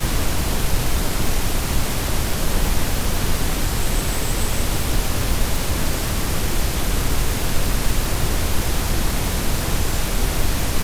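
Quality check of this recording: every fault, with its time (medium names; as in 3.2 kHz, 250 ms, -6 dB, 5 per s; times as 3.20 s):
crackle 210 per s -22 dBFS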